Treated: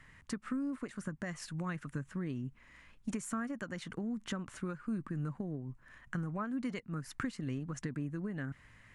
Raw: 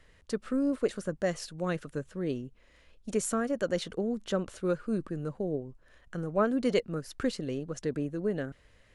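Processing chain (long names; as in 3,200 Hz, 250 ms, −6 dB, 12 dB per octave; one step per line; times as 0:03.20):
downward compressor 5 to 1, threshold −37 dBFS, peak gain reduction 14.5 dB
graphic EQ with 10 bands 125 Hz +10 dB, 250 Hz +7 dB, 500 Hz −9 dB, 1,000 Hz +9 dB, 2,000 Hz +9 dB, 4,000 Hz −3 dB, 8,000 Hz +5 dB
de-essing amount 70%
level −3.5 dB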